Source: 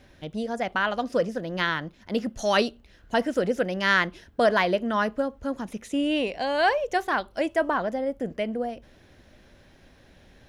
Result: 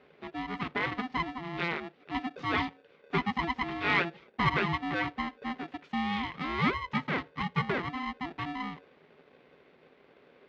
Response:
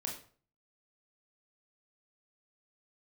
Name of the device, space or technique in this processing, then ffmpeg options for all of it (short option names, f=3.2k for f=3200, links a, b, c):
ring modulator pedal into a guitar cabinet: -filter_complex "[0:a]asettb=1/sr,asplit=3[a][b][c];[a]atrim=end=3.174[d];[b]atrim=start=3.17:end=4.54,asetpts=PTS-STARTPTS,afade=t=in:d=0.004:c=qsin,afade=t=out:st=1.366:d=0.004:c=qsin,aecho=1:1:6.6:0.59,atrim=end_sample=60417[e];[c]atrim=start=4.536[f];[d][e]acrossfade=d=0.004:c1=hsin:c2=qsin[g];[g][f]acrossfade=d=0.004:c1=qsin:c2=hsin,aeval=exprs='val(0)*sgn(sin(2*PI*510*n/s))':c=same,highpass=79,equalizer=f=99:t=q:w=4:g=-8,equalizer=f=160:t=q:w=4:g=9,equalizer=f=250:t=q:w=4:g=5,equalizer=f=390:t=q:w=4:g=10,equalizer=f=2k:t=q:w=4:g=5,lowpass=f=3.7k:w=0.5412,lowpass=f=3.7k:w=1.3066,volume=-8.5dB"